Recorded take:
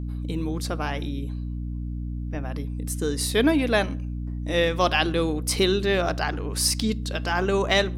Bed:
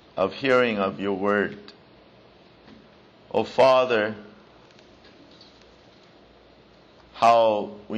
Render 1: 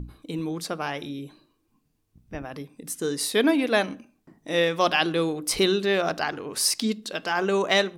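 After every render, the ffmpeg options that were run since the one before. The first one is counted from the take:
-af "bandreject=f=60:t=h:w=6,bandreject=f=120:t=h:w=6,bandreject=f=180:t=h:w=6,bandreject=f=240:t=h:w=6,bandreject=f=300:t=h:w=6"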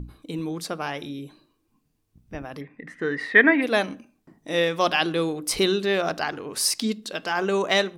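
-filter_complex "[0:a]asplit=3[a][b][c];[a]afade=t=out:st=2.6:d=0.02[d];[b]lowpass=f=1.9k:t=q:w=13,afade=t=in:st=2.6:d=0.02,afade=t=out:st=3.61:d=0.02[e];[c]afade=t=in:st=3.61:d=0.02[f];[d][e][f]amix=inputs=3:normalize=0"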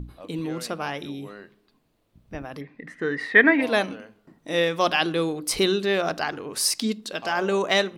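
-filter_complex "[1:a]volume=-21dB[a];[0:a][a]amix=inputs=2:normalize=0"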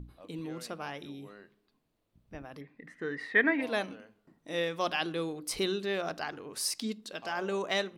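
-af "volume=-9.5dB"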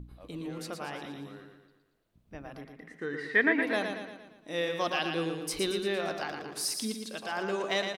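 -af "aecho=1:1:115|230|345|460|575|690:0.501|0.256|0.13|0.0665|0.0339|0.0173"

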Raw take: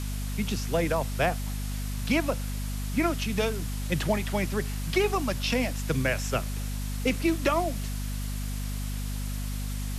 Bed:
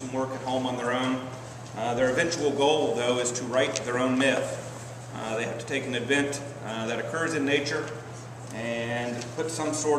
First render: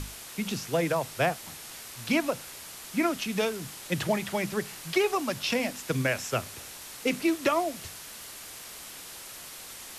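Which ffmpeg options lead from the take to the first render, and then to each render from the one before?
-af "bandreject=f=50:t=h:w=6,bandreject=f=100:t=h:w=6,bandreject=f=150:t=h:w=6,bandreject=f=200:t=h:w=6,bandreject=f=250:t=h:w=6"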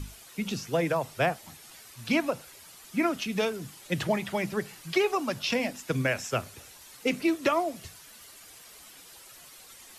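-af "afftdn=nr=10:nf=-44"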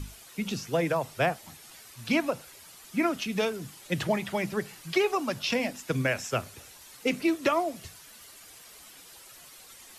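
-af anull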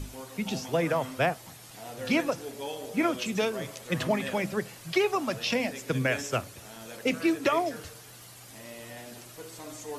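-filter_complex "[1:a]volume=-14.5dB[a];[0:a][a]amix=inputs=2:normalize=0"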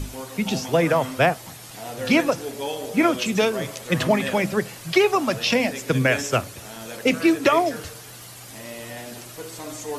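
-af "volume=7.5dB"

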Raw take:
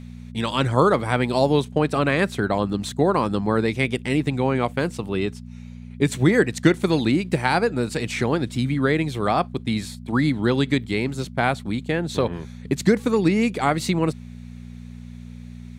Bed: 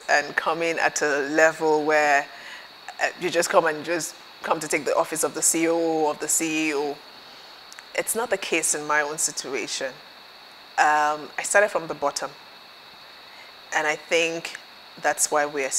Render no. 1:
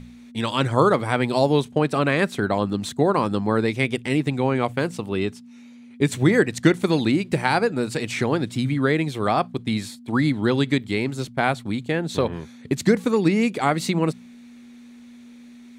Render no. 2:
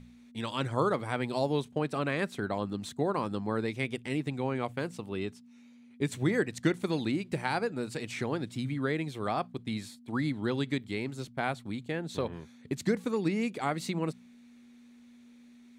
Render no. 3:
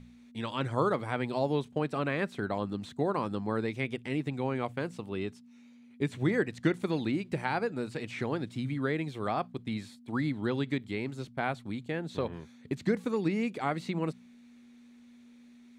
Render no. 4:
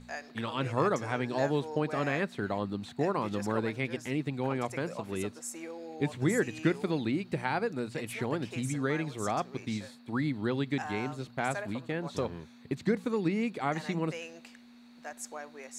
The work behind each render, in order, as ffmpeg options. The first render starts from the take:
-af "bandreject=f=60:t=h:w=4,bandreject=f=120:t=h:w=4,bandreject=f=180:t=h:w=4"
-af "volume=-10.5dB"
-filter_complex "[0:a]acrossover=split=3700[a][b];[b]acompressor=threshold=-52dB:ratio=4:attack=1:release=60[c];[a][c]amix=inputs=2:normalize=0,highshelf=f=10k:g=-5"
-filter_complex "[1:a]volume=-20.5dB[a];[0:a][a]amix=inputs=2:normalize=0"

